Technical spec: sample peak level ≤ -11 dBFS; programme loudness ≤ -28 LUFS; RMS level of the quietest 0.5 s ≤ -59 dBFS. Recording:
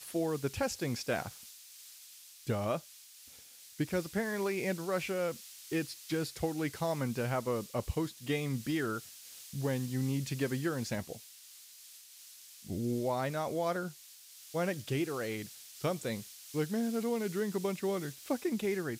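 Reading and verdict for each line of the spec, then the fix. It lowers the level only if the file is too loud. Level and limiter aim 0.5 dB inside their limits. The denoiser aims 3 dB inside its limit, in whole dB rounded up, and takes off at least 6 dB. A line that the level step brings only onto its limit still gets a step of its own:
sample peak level -20.5 dBFS: OK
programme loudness -35.5 LUFS: OK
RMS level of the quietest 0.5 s -55 dBFS: fail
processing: denoiser 7 dB, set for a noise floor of -55 dBFS

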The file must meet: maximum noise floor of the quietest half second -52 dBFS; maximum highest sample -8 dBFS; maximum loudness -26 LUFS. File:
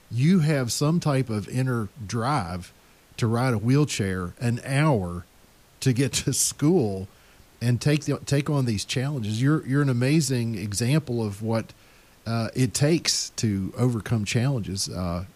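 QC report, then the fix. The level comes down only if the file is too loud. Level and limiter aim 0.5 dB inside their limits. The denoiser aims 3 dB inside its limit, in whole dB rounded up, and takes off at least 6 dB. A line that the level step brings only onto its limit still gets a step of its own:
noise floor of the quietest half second -55 dBFS: OK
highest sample -9.0 dBFS: OK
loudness -24.5 LUFS: fail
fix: gain -2 dB

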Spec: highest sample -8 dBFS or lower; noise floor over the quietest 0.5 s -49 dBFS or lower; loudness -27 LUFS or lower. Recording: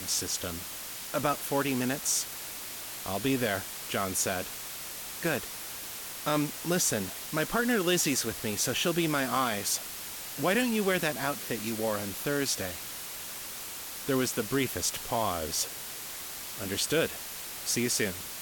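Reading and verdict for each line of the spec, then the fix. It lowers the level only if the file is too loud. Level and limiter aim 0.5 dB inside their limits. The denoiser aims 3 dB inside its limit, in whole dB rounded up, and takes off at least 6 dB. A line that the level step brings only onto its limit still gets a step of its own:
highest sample -15.0 dBFS: OK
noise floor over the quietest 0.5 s -40 dBFS: fail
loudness -30.5 LUFS: OK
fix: denoiser 12 dB, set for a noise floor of -40 dBFS

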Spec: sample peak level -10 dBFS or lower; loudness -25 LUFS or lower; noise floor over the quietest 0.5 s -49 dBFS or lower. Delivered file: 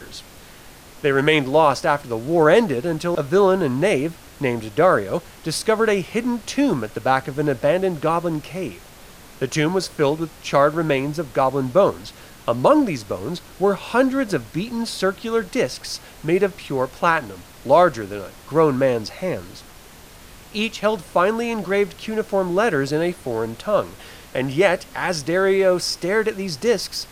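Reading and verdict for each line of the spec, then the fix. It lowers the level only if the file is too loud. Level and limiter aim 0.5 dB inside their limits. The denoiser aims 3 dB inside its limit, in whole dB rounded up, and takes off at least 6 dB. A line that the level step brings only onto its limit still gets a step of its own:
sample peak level -3.0 dBFS: fail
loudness -20.5 LUFS: fail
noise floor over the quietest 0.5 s -43 dBFS: fail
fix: denoiser 6 dB, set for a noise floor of -43 dBFS; gain -5 dB; limiter -10.5 dBFS

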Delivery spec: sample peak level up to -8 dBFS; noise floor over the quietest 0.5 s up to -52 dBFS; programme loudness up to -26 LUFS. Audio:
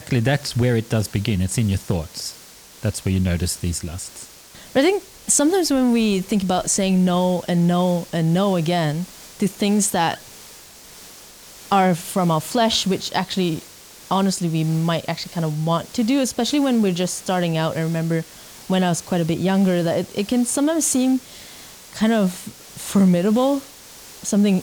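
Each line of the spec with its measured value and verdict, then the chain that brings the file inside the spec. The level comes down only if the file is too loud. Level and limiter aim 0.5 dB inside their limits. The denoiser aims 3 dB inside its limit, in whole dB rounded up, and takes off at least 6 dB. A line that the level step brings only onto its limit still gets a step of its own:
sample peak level -6.0 dBFS: fail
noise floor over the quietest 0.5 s -44 dBFS: fail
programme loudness -20.5 LUFS: fail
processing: denoiser 6 dB, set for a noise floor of -44 dBFS; gain -6 dB

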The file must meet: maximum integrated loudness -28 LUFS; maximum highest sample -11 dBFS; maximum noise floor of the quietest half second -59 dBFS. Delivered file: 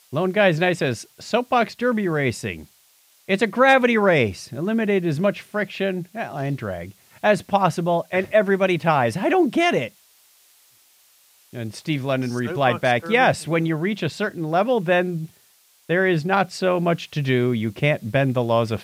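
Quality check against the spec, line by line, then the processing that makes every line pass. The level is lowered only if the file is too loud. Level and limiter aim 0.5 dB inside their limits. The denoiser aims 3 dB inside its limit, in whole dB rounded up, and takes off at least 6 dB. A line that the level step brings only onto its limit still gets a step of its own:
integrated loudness -21.0 LUFS: fail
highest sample -4.0 dBFS: fail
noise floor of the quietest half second -57 dBFS: fail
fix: gain -7.5 dB

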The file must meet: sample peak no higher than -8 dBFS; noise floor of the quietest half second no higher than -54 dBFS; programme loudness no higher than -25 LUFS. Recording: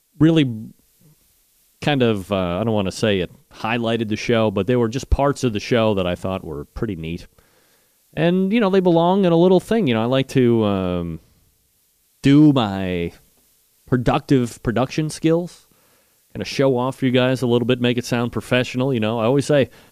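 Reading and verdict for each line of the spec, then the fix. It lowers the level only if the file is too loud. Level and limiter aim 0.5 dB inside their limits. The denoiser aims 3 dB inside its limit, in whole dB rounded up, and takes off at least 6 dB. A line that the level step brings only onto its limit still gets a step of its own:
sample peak -5.0 dBFS: fail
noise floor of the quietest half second -62 dBFS: OK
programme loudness -19.0 LUFS: fail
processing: gain -6.5 dB

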